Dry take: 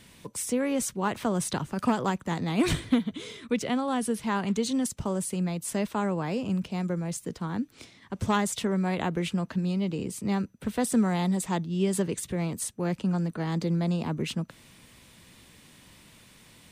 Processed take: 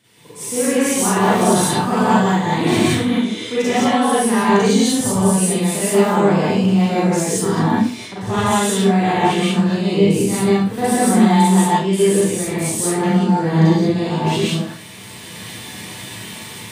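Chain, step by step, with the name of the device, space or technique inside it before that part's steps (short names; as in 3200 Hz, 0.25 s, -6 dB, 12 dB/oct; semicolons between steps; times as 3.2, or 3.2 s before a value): 13.33–13.74 low shelf 380 Hz +7.5 dB; far laptop microphone (reverb RT60 0.40 s, pre-delay 34 ms, DRR -7.5 dB; HPF 120 Hz 12 dB/oct; AGC gain up to 16 dB); non-linear reverb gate 0.2 s rising, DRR -5 dB; gain -8 dB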